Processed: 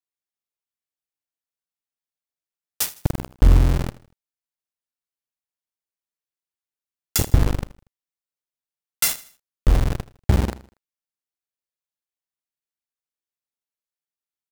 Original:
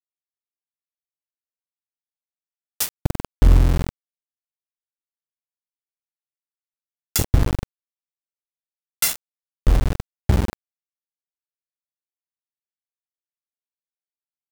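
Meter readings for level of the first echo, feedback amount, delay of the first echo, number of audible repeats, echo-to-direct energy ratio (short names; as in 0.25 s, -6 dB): -18.0 dB, 38%, 79 ms, 3, -17.5 dB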